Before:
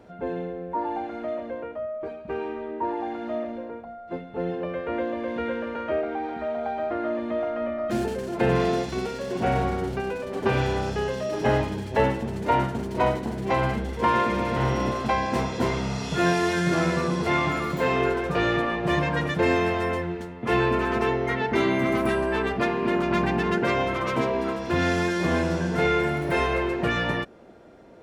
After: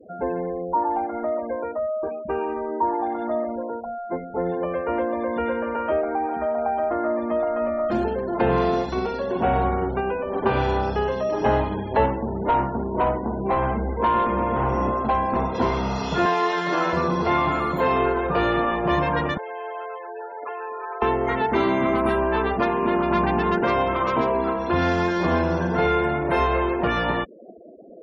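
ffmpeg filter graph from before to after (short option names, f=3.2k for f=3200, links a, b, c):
-filter_complex "[0:a]asettb=1/sr,asplit=3[a][b][c];[a]atrim=end=12.064[d];[b]atrim=start=12.06:end=15.55,asetpts=PTS-STARTPTS,afade=t=in:d=0.004:c=qsin,afade=t=out:st=3.486:d=0.004:c=qsin,highshelf=f=2.1k:g=-9,asoftclip=type=hard:threshold=-20dB[e];[c]atrim=start=15.546[f];[d][e]acrossfade=d=0.004:c1=hsin:c2=qsin[g];[g][f]acrossfade=d=0.004:c1=qsin:c2=hsin,asettb=1/sr,asplit=3[h][i][j];[h]atrim=end=16.254[k];[i]atrim=start=16.25:end=16.93,asetpts=PTS-STARTPTS,afade=t=in:d=0.004:c=qsin,afade=t=out:st=0.676:d=0.004:c=qsin,highpass=370,lowpass=6.5k,aecho=1:1:6.7:0.61,atrim=end_sample=29988[l];[j]atrim=start=16.926[m];[k][l]acrossfade=d=0.004:c1=hsin:c2=qsin[n];[n][m]acrossfade=d=0.004:c1=qsin:c2=hsin,asettb=1/sr,asplit=3[o][p][q];[o]atrim=end=19.374[r];[p]atrim=start=19.37:end=21.02,asetpts=PTS-STARTPTS,afade=t=in:d=0.004:c=qsin,afade=t=out:st=1.646:d=0.004:c=qsin,highpass=f=430:w=0.5412,highpass=f=430:w=1.3066,acompressor=threshold=-40dB:ratio=6:attack=3.2:release=140:knee=1:detection=peak,aecho=1:1:7:0.62,atrim=end_sample=72765[s];[q]atrim=start=21.016[t];[r][s]acrossfade=d=0.004:c1=hsin:c2=qsin[u];[u][t]acrossfade=d=0.004:c1=qsin:c2=hsin,afftfilt=real='re*gte(hypot(re,im),0.0112)':imag='im*gte(hypot(re,im),0.0112)':win_size=1024:overlap=0.75,equalizer=f=125:t=o:w=1:g=-9,equalizer=f=1k:t=o:w=1:g=6,equalizer=f=2k:t=o:w=1:g=-4,equalizer=f=8k:t=o:w=1:g=-9,acrossover=split=170[v][w];[w]acompressor=threshold=-35dB:ratio=1.5[x];[v][x]amix=inputs=2:normalize=0,volume=7dB"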